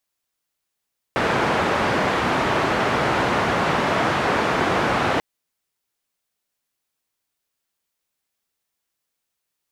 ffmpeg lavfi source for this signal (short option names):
-f lavfi -i "anoisesrc=c=white:d=4.04:r=44100:seed=1,highpass=f=90,lowpass=f=1300,volume=-3.6dB"